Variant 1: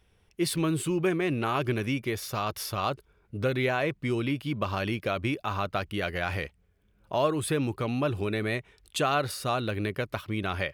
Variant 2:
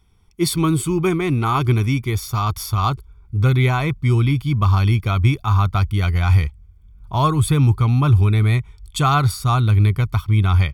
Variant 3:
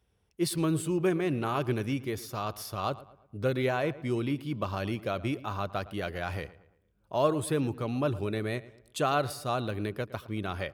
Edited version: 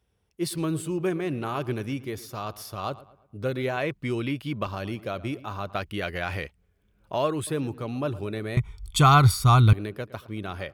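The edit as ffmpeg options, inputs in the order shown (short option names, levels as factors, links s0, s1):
-filter_complex "[0:a]asplit=2[s0][s1];[2:a]asplit=4[s2][s3][s4][s5];[s2]atrim=end=3.772[s6];[s0]atrim=start=3.768:end=4.672[s7];[s3]atrim=start=4.668:end=5.752[s8];[s1]atrim=start=5.748:end=7.472[s9];[s4]atrim=start=7.468:end=8.572[s10];[1:a]atrim=start=8.568:end=9.732[s11];[s5]atrim=start=9.728[s12];[s6][s7]acrossfade=d=0.004:c1=hsin:c2=hsin[s13];[s13][s8]acrossfade=d=0.004:c1=hsin:c2=hsin[s14];[s14][s9]acrossfade=d=0.004:c1=hsin:c2=hsin[s15];[s15][s10]acrossfade=d=0.004:c1=hsin:c2=hsin[s16];[s16][s11]acrossfade=d=0.004:c1=hsin:c2=hsin[s17];[s17][s12]acrossfade=d=0.004:c1=hsin:c2=hsin"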